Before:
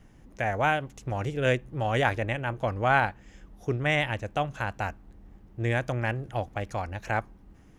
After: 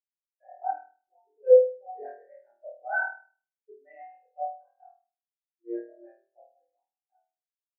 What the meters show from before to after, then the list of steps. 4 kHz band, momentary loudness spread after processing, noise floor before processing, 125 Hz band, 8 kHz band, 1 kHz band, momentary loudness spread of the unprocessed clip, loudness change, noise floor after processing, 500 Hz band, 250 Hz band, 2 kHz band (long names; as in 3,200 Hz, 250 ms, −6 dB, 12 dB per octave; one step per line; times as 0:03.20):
below −40 dB, 22 LU, −54 dBFS, below −40 dB, below −30 dB, −8.0 dB, 9 LU, +2.5 dB, below −85 dBFS, +4.0 dB, −12.0 dB, −7.0 dB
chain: fade-out on the ending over 1.37 s
treble cut that deepens with the level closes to 2,900 Hz, closed at −22.5 dBFS
high-pass filter 290 Hz 24 dB per octave
flutter between parallel walls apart 4.4 metres, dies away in 1.5 s
every bin expanded away from the loudest bin 4 to 1
level −1.5 dB